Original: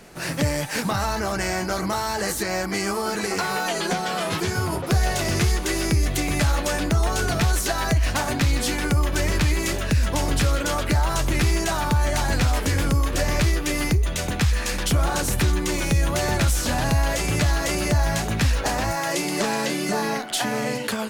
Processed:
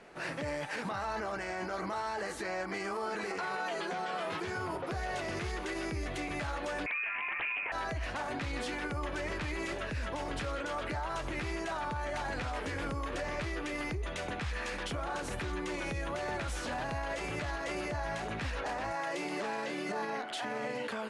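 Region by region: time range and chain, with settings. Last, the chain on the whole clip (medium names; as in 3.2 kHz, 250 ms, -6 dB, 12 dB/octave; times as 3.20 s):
6.86–7.72 s: frequency inversion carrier 2.5 kHz + loudspeaker Doppler distortion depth 0.67 ms
whole clip: steep low-pass 11 kHz 48 dB/octave; tone controls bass -11 dB, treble -14 dB; peak limiter -23 dBFS; trim -5 dB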